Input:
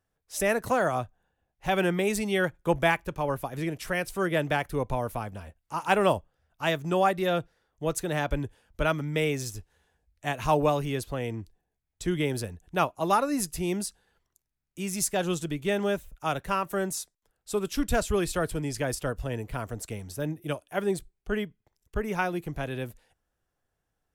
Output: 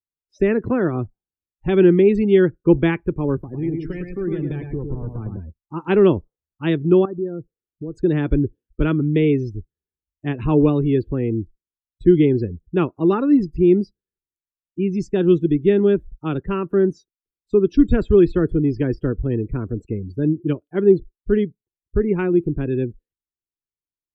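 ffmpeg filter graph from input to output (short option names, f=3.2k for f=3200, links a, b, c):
-filter_complex "[0:a]asettb=1/sr,asplit=3[a][b][c];[a]atrim=end=3.374[d];[b]atrim=start=3.37:end=5.37,asetpts=PTS-STARTPTS,afade=t=in:d=0.004:c=qsin,afade=t=out:st=1.996:d=0.004:c=qsin,acrossover=split=130|3000[e][f][g];[f]acompressor=threshold=-33dB:ratio=6:attack=3.2:release=140:knee=2.83:detection=peak[h];[e][h][g]amix=inputs=3:normalize=0,asoftclip=type=hard:threshold=-33dB,aecho=1:1:107|214|321|428|535:0.596|0.226|0.086|0.0327|0.0124,atrim=end_sample=88200[i];[c]atrim=start=5.366[j];[d][i]acrossfade=d=0.004:c1=hsin:c2=qsin[k];[k][j]acrossfade=d=0.004:c1=qsin:c2=hsin,asettb=1/sr,asplit=3[l][m][n];[l]atrim=end=7.054[o];[m]atrim=start=7.05:end=7.94,asetpts=PTS-STARTPTS,afade=t=in:d=0.004:c=qsin,afade=t=out:st=0.886:d=0.004:c=qsin,equalizer=f=3k:t=o:w=1.2:g=-13,acompressor=threshold=-40dB:ratio=2.5:attack=3.2:release=140:knee=1:detection=peak[p];[n]atrim=start=7.936[q];[o][p]acrossfade=d=0.004:c1=hsin:c2=qsin[r];[r][q]acrossfade=d=0.004:c1=qsin:c2=hsin,acrossover=split=4800[s][t];[t]acompressor=threshold=-51dB:ratio=4:attack=1:release=60[u];[s][u]amix=inputs=2:normalize=0,afftdn=nr=34:nf=-39,lowshelf=f=490:t=q:w=3:g=10"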